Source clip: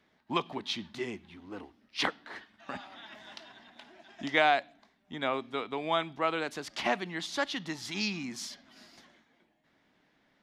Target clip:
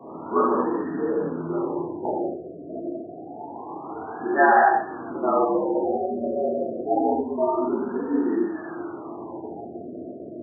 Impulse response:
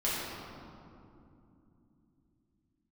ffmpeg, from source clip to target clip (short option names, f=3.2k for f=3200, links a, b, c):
-filter_complex "[0:a]aeval=exprs='val(0)+0.5*0.0119*sgn(val(0))':c=same,afreqshift=78[a];[1:a]atrim=start_sample=2205,afade=t=out:st=0.31:d=0.01,atrim=end_sample=14112[b];[a][b]afir=irnorm=-1:irlink=0,afftfilt=real='re*lt(b*sr/1024,690*pow(1900/690,0.5+0.5*sin(2*PI*0.27*pts/sr)))':imag='im*lt(b*sr/1024,690*pow(1900/690,0.5+0.5*sin(2*PI*0.27*pts/sr)))':win_size=1024:overlap=0.75,volume=2.5dB"